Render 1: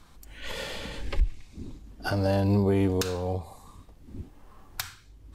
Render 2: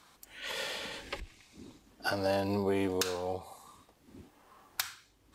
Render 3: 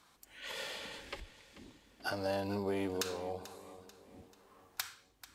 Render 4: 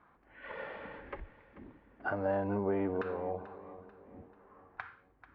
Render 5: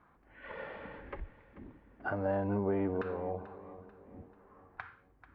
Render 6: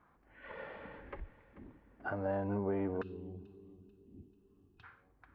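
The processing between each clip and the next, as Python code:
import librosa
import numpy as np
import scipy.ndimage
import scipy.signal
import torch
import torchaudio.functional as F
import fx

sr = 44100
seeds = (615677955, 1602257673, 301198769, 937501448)

y1 = fx.highpass(x, sr, hz=580.0, slope=6)
y2 = fx.echo_feedback(y1, sr, ms=439, feedback_pct=46, wet_db=-15.5)
y2 = F.gain(torch.from_numpy(y2), -5.0).numpy()
y3 = scipy.signal.sosfilt(scipy.signal.butter(4, 1800.0, 'lowpass', fs=sr, output='sos'), y2)
y3 = F.gain(torch.from_numpy(y3), 3.5).numpy()
y4 = fx.low_shelf(y3, sr, hz=220.0, db=6.0)
y4 = F.gain(torch.from_numpy(y4), -1.5).numpy()
y5 = fx.spec_box(y4, sr, start_s=3.02, length_s=1.81, low_hz=450.0, high_hz=2500.0, gain_db=-23)
y5 = F.gain(torch.from_numpy(y5), -3.0).numpy()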